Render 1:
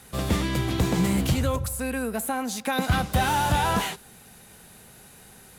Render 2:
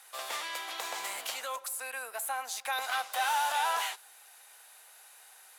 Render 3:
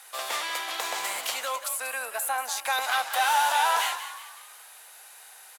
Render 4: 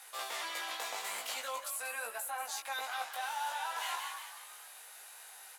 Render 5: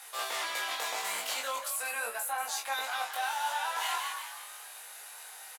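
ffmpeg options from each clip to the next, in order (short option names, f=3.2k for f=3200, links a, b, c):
-af "highpass=f=700:w=0.5412,highpass=f=700:w=1.3066,volume=-4dB"
-filter_complex "[0:a]asplit=6[a][b][c][d][e][f];[b]adelay=185,afreqshift=61,volume=-11.5dB[g];[c]adelay=370,afreqshift=122,volume=-18.4dB[h];[d]adelay=555,afreqshift=183,volume=-25.4dB[i];[e]adelay=740,afreqshift=244,volume=-32.3dB[j];[f]adelay=925,afreqshift=305,volume=-39.2dB[k];[a][g][h][i][j][k]amix=inputs=6:normalize=0,volume=6dB"
-af "areverse,acompressor=threshold=-33dB:ratio=6,areverse,flanger=delay=17.5:depth=2.1:speed=0.46"
-filter_complex "[0:a]asplit=2[a][b];[b]adelay=26,volume=-6dB[c];[a][c]amix=inputs=2:normalize=0,volume=4dB"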